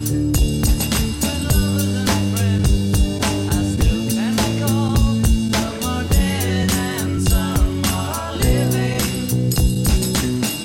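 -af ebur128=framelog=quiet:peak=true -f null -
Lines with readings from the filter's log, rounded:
Integrated loudness:
  I:         -18.7 LUFS
  Threshold: -28.7 LUFS
Loudness range:
  LRA:         0.8 LU
  Threshold: -38.7 LUFS
  LRA low:   -19.2 LUFS
  LRA high:  -18.3 LUFS
True peak:
  Peak:       -5.1 dBFS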